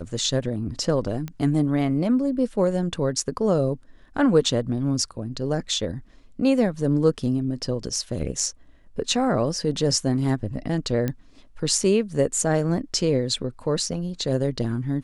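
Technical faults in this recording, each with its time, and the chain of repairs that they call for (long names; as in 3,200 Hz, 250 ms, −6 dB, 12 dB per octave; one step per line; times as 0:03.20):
0:01.28: click −19 dBFS
0:11.08: click −13 dBFS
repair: click removal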